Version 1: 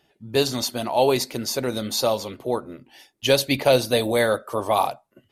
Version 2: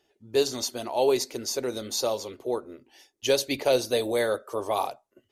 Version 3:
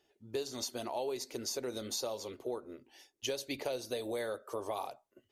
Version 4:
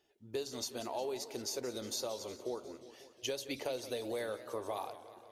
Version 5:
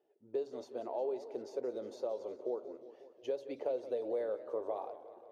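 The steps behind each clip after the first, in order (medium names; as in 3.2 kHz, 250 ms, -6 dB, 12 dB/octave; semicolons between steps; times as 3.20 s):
fifteen-band graphic EQ 160 Hz -10 dB, 400 Hz +7 dB, 6.3 kHz +7 dB; trim -7.5 dB
compression 6:1, threshold -30 dBFS, peak gain reduction 12 dB; trim -4 dB
modulated delay 180 ms, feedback 66%, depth 165 cents, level -14 dB; trim -1.5 dB
band-pass filter 500 Hz, Q 1.7; trim +4 dB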